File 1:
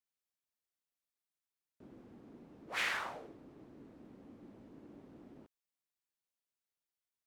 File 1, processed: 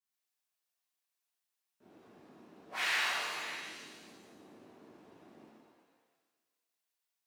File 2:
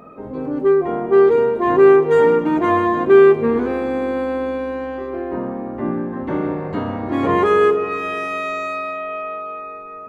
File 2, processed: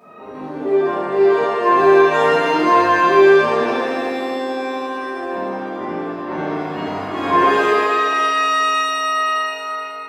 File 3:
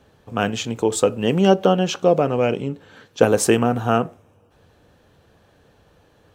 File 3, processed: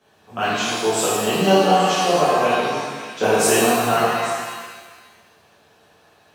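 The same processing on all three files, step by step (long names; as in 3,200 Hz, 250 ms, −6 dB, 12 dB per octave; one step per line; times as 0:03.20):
high-pass filter 87 Hz
low-shelf EQ 330 Hz −12 dB
notch filter 510 Hz, Q 13
on a send: echo through a band-pass that steps 277 ms, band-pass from 910 Hz, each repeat 1.4 octaves, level −8 dB
on the sum: reverb with rising layers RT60 1.4 s, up +7 semitones, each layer −8 dB, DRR −10.5 dB
level −6 dB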